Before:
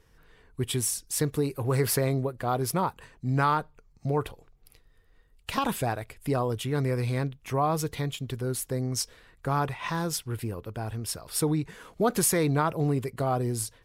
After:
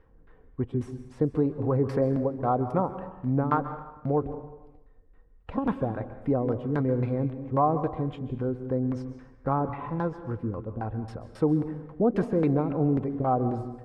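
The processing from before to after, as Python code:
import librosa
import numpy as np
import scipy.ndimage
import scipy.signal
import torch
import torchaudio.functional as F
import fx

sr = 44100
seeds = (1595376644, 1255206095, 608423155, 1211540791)

y = x + 0.32 * np.pad(x, (int(3.8 * sr / 1000.0), 0))[:len(x)]
y = fx.filter_lfo_lowpass(y, sr, shape='saw_down', hz=3.7, low_hz=280.0, high_hz=1600.0, q=0.95)
y = fx.rev_plate(y, sr, seeds[0], rt60_s=0.95, hf_ratio=0.8, predelay_ms=120, drr_db=10.5)
y = y * 10.0 ** (2.0 / 20.0)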